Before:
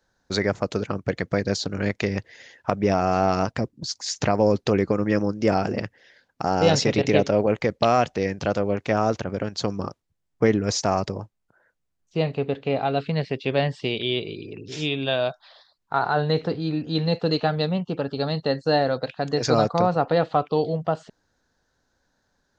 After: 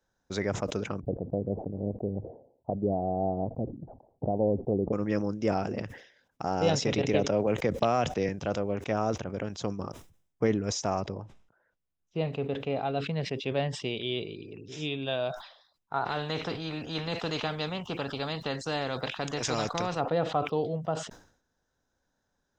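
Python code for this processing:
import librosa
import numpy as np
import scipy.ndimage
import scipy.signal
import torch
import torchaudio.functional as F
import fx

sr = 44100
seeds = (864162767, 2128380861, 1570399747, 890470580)

y = fx.steep_lowpass(x, sr, hz=780.0, slope=48, at=(1.0, 4.93))
y = fx.band_squash(y, sr, depth_pct=70, at=(7.14, 8.29))
y = fx.lowpass(y, sr, hz=4700.0, slope=12, at=(11.01, 12.25))
y = fx.spectral_comp(y, sr, ratio=2.0, at=(16.05, 19.99), fade=0.02)
y = fx.peak_eq(y, sr, hz=1800.0, db=-3.0, octaves=0.77)
y = fx.notch(y, sr, hz=4400.0, q=5.5)
y = fx.sustainer(y, sr, db_per_s=100.0)
y = y * 10.0 ** (-7.0 / 20.0)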